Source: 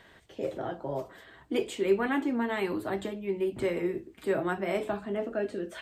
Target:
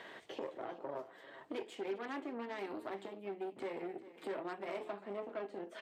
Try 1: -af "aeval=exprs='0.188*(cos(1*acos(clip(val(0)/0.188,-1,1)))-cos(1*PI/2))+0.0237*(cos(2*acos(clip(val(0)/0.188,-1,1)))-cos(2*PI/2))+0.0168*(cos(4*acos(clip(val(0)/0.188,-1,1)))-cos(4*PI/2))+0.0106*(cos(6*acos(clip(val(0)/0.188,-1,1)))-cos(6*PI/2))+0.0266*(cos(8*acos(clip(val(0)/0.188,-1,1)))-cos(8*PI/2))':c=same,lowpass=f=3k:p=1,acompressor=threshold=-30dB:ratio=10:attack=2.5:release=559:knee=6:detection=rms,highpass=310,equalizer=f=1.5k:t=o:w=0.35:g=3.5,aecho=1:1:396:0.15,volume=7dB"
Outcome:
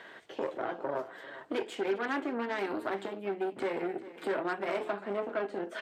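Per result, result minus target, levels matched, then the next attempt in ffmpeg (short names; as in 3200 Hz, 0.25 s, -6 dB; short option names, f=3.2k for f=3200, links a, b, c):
compressor: peak gain reduction -8.5 dB; 2000 Hz band +2.5 dB
-af "aeval=exprs='0.188*(cos(1*acos(clip(val(0)/0.188,-1,1)))-cos(1*PI/2))+0.0237*(cos(2*acos(clip(val(0)/0.188,-1,1)))-cos(2*PI/2))+0.0168*(cos(4*acos(clip(val(0)/0.188,-1,1)))-cos(4*PI/2))+0.0106*(cos(6*acos(clip(val(0)/0.188,-1,1)))-cos(6*PI/2))+0.0266*(cos(8*acos(clip(val(0)/0.188,-1,1)))-cos(8*PI/2))':c=same,lowpass=f=3k:p=1,acompressor=threshold=-39.5dB:ratio=10:attack=2.5:release=559:knee=6:detection=rms,highpass=310,equalizer=f=1.5k:t=o:w=0.35:g=3.5,aecho=1:1:396:0.15,volume=7dB"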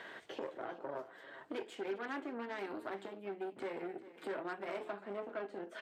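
2000 Hz band +3.0 dB
-af "aeval=exprs='0.188*(cos(1*acos(clip(val(0)/0.188,-1,1)))-cos(1*PI/2))+0.0237*(cos(2*acos(clip(val(0)/0.188,-1,1)))-cos(2*PI/2))+0.0168*(cos(4*acos(clip(val(0)/0.188,-1,1)))-cos(4*PI/2))+0.0106*(cos(6*acos(clip(val(0)/0.188,-1,1)))-cos(6*PI/2))+0.0266*(cos(8*acos(clip(val(0)/0.188,-1,1)))-cos(8*PI/2))':c=same,lowpass=f=3k:p=1,acompressor=threshold=-39.5dB:ratio=10:attack=2.5:release=559:knee=6:detection=rms,highpass=310,equalizer=f=1.5k:t=o:w=0.35:g=-3,aecho=1:1:396:0.15,volume=7dB"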